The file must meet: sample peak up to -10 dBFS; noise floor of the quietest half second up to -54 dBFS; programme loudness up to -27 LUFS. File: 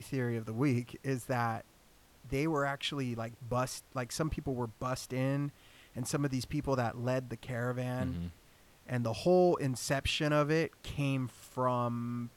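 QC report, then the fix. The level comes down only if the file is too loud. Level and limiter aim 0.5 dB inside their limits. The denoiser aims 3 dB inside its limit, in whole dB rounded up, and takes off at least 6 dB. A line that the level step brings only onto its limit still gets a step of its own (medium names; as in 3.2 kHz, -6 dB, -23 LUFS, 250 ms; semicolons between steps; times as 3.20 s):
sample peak -17.5 dBFS: pass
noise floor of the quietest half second -62 dBFS: pass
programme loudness -34.0 LUFS: pass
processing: none needed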